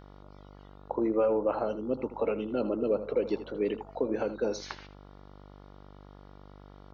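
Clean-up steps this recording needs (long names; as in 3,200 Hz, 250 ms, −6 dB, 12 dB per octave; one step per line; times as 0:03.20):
hum removal 49.1 Hz, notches 29
echo removal 80 ms −13.5 dB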